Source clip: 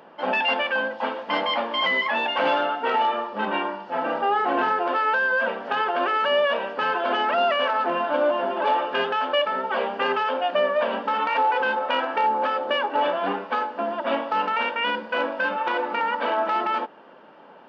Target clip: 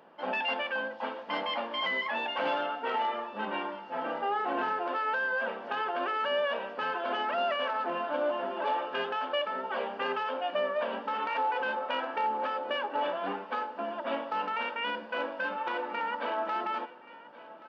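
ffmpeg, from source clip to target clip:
-af "aecho=1:1:1127|2254|3381|4508:0.119|0.0582|0.0285|0.014,volume=0.376"

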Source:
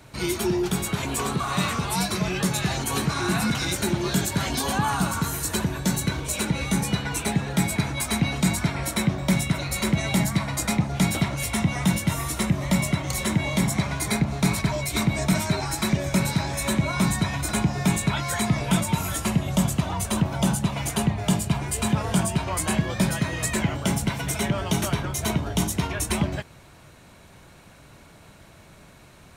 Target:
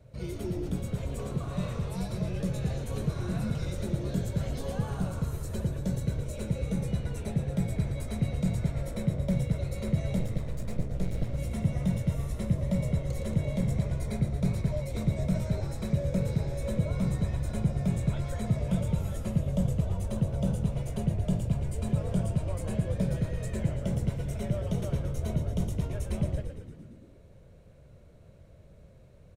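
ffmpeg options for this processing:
-filter_complex "[0:a]asettb=1/sr,asplit=3[s0][s1][s2];[s0]atrim=end=10.194[s3];[s1]atrim=start=10.19:end=11.34,asetpts=PTS-STARTPTS,afade=t=in:d=0.004:c=qsin,afade=t=out:st=1.146:d=0.004:c=qsin,aeval=exprs='max(val(0),0)':c=same[s4];[s2]atrim=start=11.336[s5];[s3][s4]acrossfade=d=0.004:c1=hsin:c2=qsin[s6];[s6][s5]acrossfade=d=0.004:c1=qsin:c2=hsin,firequalizer=gain_entry='entry(110,0);entry(310,-14);entry(530,1);entry(810,-18);entry(15000,-21)':delay=0.05:min_phase=1,asplit=9[s7][s8][s9][s10][s11][s12][s13][s14][s15];[s8]adelay=114,afreqshift=-60,volume=0.447[s16];[s9]adelay=228,afreqshift=-120,volume=0.275[s17];[s10]adelay=342,afreqshift=-180,volume=0.172[s18];[s11]adelay=456,afreqshift=-240,volume=0.106[s19];[s12]adelay=570,afreqshift=-300,volume=0.0661[s20];[s13]adelay=684,afreqshift=-360,volume=0.0407[s21];[s14]adelay=798,afreqshift=-420,volume=0.0254[s22];[s15]adelay=912,afreqshift=-480,volume=0.0157[s23];[s7][s16][s17][s18][s19][s20][s21][s22][s23]amix=inputs=9:normalize=0,volume=0.841"

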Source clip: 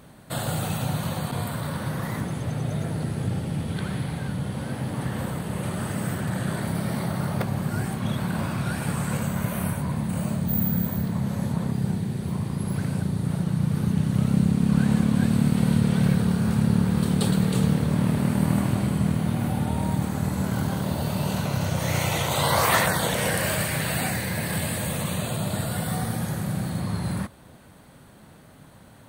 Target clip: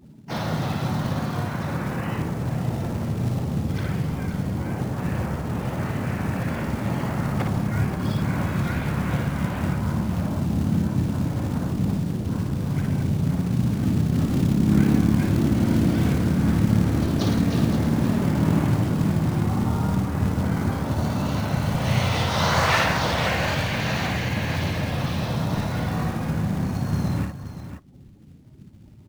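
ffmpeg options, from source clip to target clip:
-filter_complex "[0:a]lowpass=f=6100:w=0.5412,lowpass=f=6100:w=1.3066,afftdn=nr=35:nf=-40,asubboost=boost=3:cutoff=89,asplit=2[s0][s1];[s1]acompressor=threshold=0.0158:ratio=12,volume=0.891[s2];[s0][s2]amix=inputs=2:normalize=0,acrusher=bits=5:mode=log:mix=0:aa=0.000001,asplit=4[s3][s4][s5][s6];[s4]asetrate=55563,aresample=44100,atempo=0.793701,volume=0.158[s7];[s5]asetrate=58866,aresample=44100,atempo=0.749154,volume=0.447[s8];[s6]asetrate=66075,aresample=44100,atempo=0.66742,volume=0.501[s9];[s3][s7][s8][s9]amix=inputs=4:normalize=0,asplit=2[s10][s11];[s11]aecho=0:1:57|525:0.562|0.316[s12];[s10][s12]amix=inputs=2:normalize=0,volume=0.75"

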